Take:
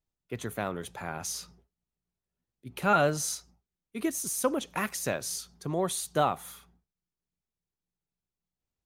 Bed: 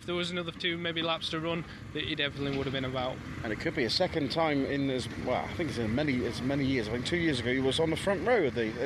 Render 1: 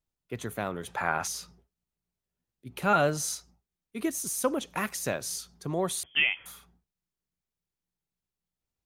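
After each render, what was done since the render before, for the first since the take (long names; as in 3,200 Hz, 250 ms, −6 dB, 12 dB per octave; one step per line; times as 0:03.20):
0:00.88–0:01.28: parametric band 1,300 Hz +11.5 dB 2.4 octaves
0:06.03–0:06.46: voice inversion scrambler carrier 3,300 Hz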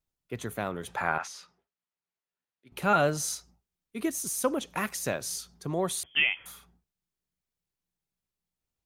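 0:01.18–0:02.72: resonant band-pass 1,600 Hz, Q 0.66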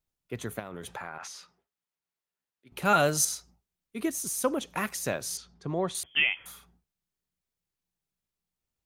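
0:00.59–0:01.23: downward compressor 10 to 1, threshold −34 dBFS
0:02.85–0:03.25: high-shelf EQ 4,100 Hz +11.5 dB
0:05.37–0:05.95: high-frequency loss of the air 120 metres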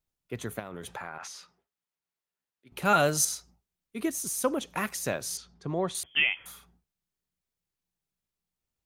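no processing that can be heard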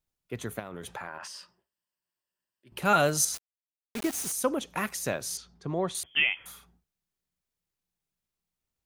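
0:01.07–0:02.78: EQ curve with evenly spaced ripples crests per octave 1.3, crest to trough 9 dB
0:03.34–0:04.32: bit-depth reduction 6 bits, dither none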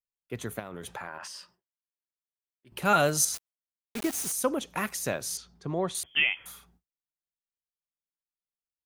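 high-shelf EQ 9,100 Hz +2 dB
noise gate with hold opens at −55 dBFS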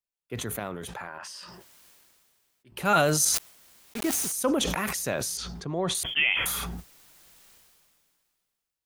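level that may fall only so fast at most 26 dB per second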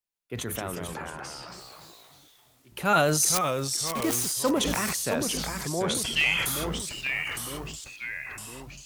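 delay with pitch and tempo change per echo 121 ms, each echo −2 semitones, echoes 3, each echo −6 dB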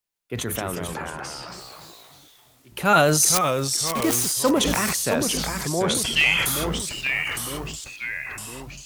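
level +5 dB
brickwall limiter −3 dBFS, peak gain reduction 1 dB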